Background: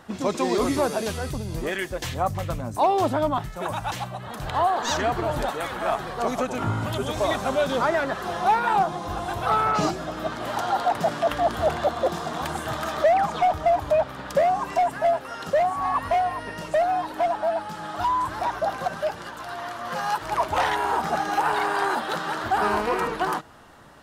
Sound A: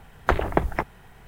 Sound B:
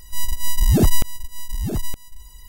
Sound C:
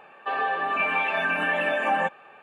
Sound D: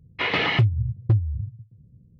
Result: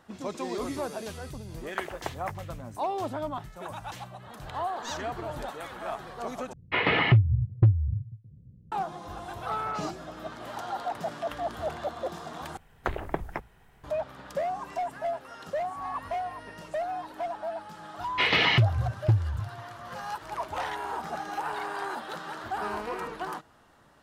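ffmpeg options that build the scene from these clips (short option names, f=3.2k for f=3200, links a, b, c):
-filter_complex "[1:a]asplit=2[a][b];[4:a]asplit=2[c][d];[0:a]volume=-10dB[e];[a]highpass=f=810:p=1[f];[c]lowpass=2.7k[g];[b]bandreject=f=60:t=h:w=6,bandreject=f=120:t=h:w=6,bandreject=f=180:t=h:w=6[h];[d]highshelf=f=3.2k:g=11[i];[e]asplit=3[j][k][l];[j]atrim=end=6.534[m];[g]atrim=end=2.19[n];[k]atrim=start=8.716:end=12.574[o];[h]atrim=end=1.27,asetpts=PTS-STARTPTS,volume=-9dB[p];[l]atrim=start=13.836[q];[f]atrim=end=1.27,asetpts=PTS-STARTPTS,volume=-9dB,afade=t=in:d=0.004:c=hsin,afade=t=out:st=1.266:d=0.004:c=hsin,adelay=1490[r];[i]atrim=end=2.19,asetpts=PTS-STARTPTS,volume=-3dB,afade=t=in:d=0.004:c=hsin,afade=t=out:st=2.186:d=0.004:c=hsin,adelay=17990[s];[m][n]acrossfade=d=0.004:c1=hsin:c2=hsin[t];[t][o]acrossfade=d=0.004:c1=hsin:c2=hsin[u];[u][p]acrossfade=d=0.004:c1=hsin:c2=hsin[v];[v][q]acrossfade=d=0.004:c1=hsin:c2=hsin[w];[w][r][s]amix=inputs=3:normalize=0"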